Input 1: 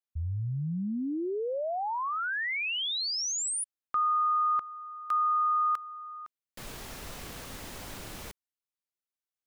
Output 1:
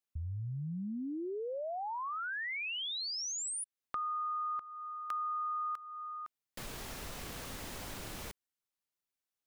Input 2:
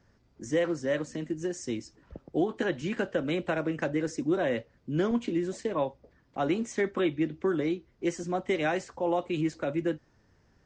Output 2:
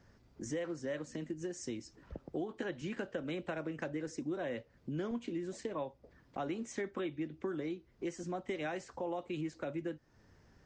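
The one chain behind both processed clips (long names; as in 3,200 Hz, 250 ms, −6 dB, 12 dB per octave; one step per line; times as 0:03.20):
downward compressor 2.5 to 1, threshold −42 dBFS
level +1 dB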